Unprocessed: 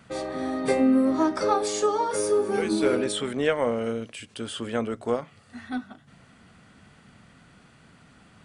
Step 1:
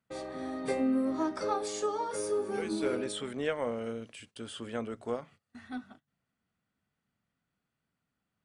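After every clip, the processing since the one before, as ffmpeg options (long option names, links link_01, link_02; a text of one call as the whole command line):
ffmpeg -i in.wav -af "agate=range=-22dB:threshold=-45dB:ratio=16:detection=peak,volume=-8.5dB" out.wav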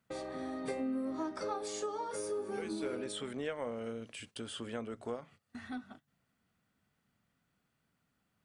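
ffmpeg -i in.wav -af "acompressor=threshold=-49dB:ratio=2,volume=5dB" out.wav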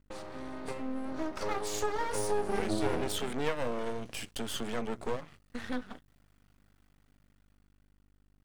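ffmpeg -i in.wav -af "dynaudnorm=framelen=270:gausssize=11:maxgain=8.5dB,aeval=exprs='val(0)+0.000631*(sin(2*PI*50*n/s)+sin(2*PI*2*50*n/s)/2+sin(2*PI*3*50*n/s)/3+sin(2*PI*4*50*n/s)/4+sin(2*PI*5*50*n/s)/5)':channel_layout=same,aeval=exprs='max(val(0),0)':channel_layout=same,volume=2.5dB" out.wav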